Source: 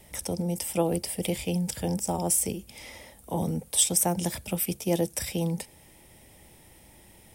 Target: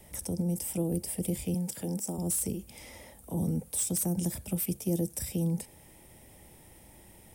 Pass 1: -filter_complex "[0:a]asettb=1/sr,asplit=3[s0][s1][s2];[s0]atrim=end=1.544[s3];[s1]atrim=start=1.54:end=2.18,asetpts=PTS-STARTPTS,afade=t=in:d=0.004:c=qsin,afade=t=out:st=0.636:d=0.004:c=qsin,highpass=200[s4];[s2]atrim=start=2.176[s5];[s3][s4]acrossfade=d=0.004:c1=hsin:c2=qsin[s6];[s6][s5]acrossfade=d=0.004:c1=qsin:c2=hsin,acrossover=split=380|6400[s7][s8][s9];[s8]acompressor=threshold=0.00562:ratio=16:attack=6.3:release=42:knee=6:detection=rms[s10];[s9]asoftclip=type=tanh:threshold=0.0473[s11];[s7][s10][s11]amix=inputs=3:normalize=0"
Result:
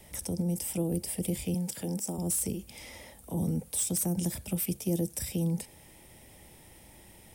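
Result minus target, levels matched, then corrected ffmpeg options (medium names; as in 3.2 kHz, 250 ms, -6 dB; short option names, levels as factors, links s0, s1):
2 kHz band +2.5 dB
-filter_complex "[0:a]asettb=1/sr,asplit=3[s0][s1][s2];[s0]atrim=end=1.544[s3];[s1]atrim=start=1.54:end=2.18,asetpts=PTS-STARTPTS,afade=t=in:d=0.004:c=qsin,afade=t=out:st=0.636:d=0.004:c=qsin,highpass=200[s4];[s2]atrim=start=2.176[s5];[s3][s4]acrossfade=d=0.004:c1=hsin:c2=qsin[s6];[s6][s5]acrossfade=d=0.004:c1=qsin:c2=hsin,acrossover=split=380|6400[s7][s8][s9];[s8]acompressor=threshold=0.00562:ratio=16:attack=6.3:release=42:knee=6:detection=rms,highshelf=f=2300:g=-6.5[s10];[s9]asoftclip=type=tanh:threshold=0.0473[s11];[s7][s10][s11]amix=inputs=3:normalize=0"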